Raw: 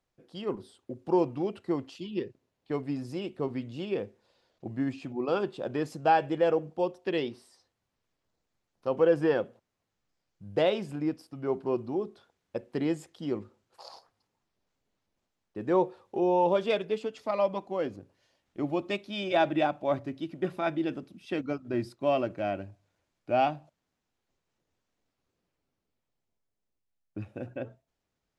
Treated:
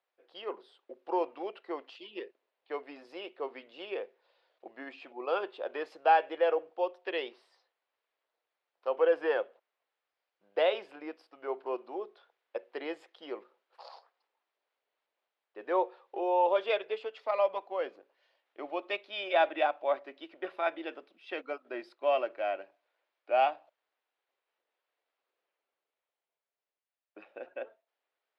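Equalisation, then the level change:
high-pass filter 460 Hz 24 dB per octave
high-frequency loss of the air 390 metres
high-shelf EQ 2,200 Hz +10.5 dB
0.0 dB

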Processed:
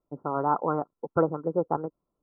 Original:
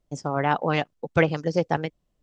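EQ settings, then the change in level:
Chebyshev low-pass with heavy ripple 1,400 Hz, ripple 6 dB
spectral tilt +2.5 dB per octave
+3.0 dB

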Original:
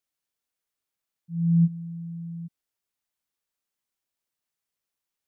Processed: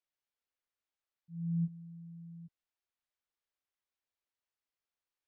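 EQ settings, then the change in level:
high-frequency loss of the air 130 metres
parametric band 190 Hz −10 dB 1.2 octaves
−4.0 dB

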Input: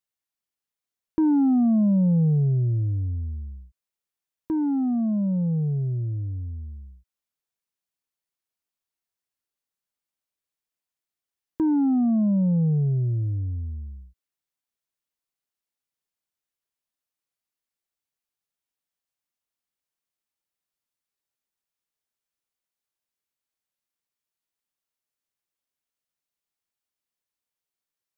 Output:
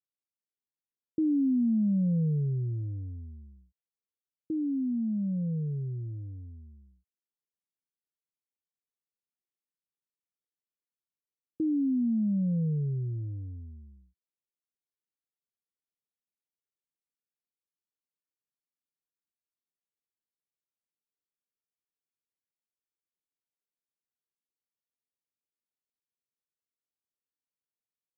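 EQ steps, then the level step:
high-pass filter 110 Hz 12 dB per octave
elliptic low-pass filter 510 Hz, stop band 40 dB
−6.0 dB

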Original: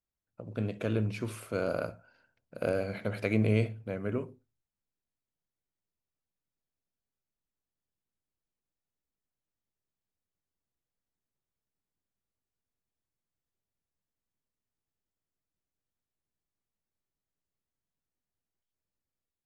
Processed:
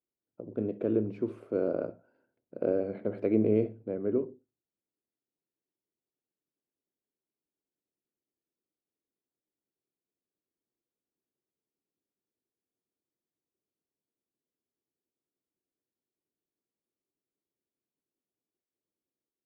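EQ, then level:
resonant band-pass 350 Hz, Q 2.2
+8.0 dB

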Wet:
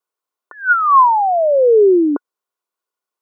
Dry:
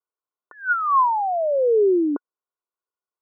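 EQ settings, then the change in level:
Bessel high-pass filter 230 Hz
+8.0 dB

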